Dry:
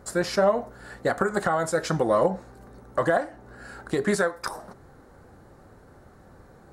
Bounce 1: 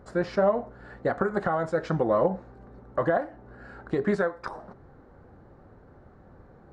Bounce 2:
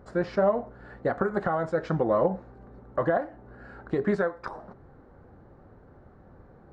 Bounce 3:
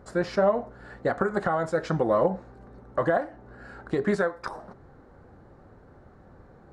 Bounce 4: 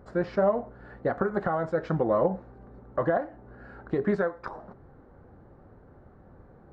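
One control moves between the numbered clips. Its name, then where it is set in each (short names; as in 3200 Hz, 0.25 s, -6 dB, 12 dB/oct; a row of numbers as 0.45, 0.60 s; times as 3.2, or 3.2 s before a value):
tape spacing loss, at 10 kHz: 29, 37, 20, 46 dB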